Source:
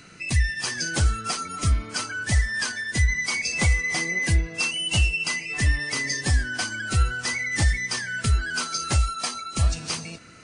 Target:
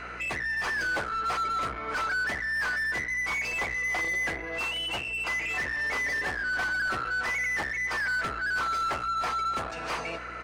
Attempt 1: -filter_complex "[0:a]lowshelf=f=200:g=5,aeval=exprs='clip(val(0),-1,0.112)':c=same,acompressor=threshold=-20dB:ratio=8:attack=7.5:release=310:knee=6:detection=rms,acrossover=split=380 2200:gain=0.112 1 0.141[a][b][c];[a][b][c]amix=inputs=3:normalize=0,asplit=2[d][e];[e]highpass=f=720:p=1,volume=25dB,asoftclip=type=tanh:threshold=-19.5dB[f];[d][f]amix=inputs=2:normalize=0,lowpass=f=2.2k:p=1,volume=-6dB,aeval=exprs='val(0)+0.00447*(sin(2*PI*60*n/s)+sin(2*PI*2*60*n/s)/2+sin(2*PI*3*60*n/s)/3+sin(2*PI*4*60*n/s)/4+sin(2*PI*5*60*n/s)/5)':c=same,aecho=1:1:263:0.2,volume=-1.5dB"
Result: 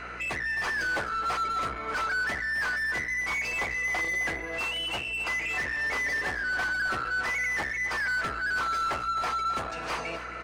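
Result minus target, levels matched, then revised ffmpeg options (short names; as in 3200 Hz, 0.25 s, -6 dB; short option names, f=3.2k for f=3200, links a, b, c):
echo-to-direct +9.5 dB
-filter_complex "[0:a]lowshelf=f=200:g=5,aeval=exprs='clip(val(0),-1,0.112)':c=same,acompressor=threshold=-20dB:ratio=8:attack=7.5:release=310:knee=6:detection=rms,acrossover=split=380 2200:gain=0.112 1 0.141[a][b][c];[a][b][c]amix=inputs=3:normalize=0,asplit=2[d][e];[e]highpass=f=720:p=1,volume=25dB,asoftclip=type=tanh:threshold=-19.5dB[f];[d][f]amix=inputs=2:normalize=0,lowpass=f=2.2k:p=1,volume=-6dB,aeval=exprs='val(0)+0.00447*(sin(2*PI*60*n/s)+sin(2*PI*2*60*n/s)/2+sin(2*PI*3*60*n/s)/3+sin(2*PI*4*60*n/s)/4+sin(2*PI*5*60*n/s)/5)':c=same,aecho=1:1:263:0.0668,volume=-1.5dB"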